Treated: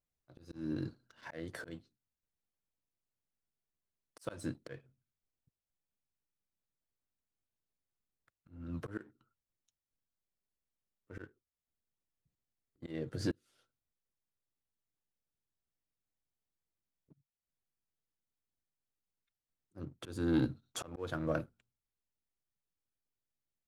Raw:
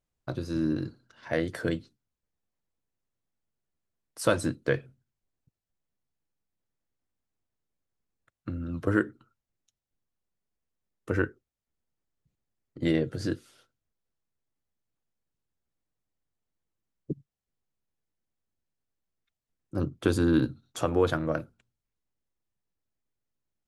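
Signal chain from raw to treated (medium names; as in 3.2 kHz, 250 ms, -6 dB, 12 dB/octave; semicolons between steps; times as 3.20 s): slow attack 424 ms; waveshaping leveller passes 1; trim -6 dB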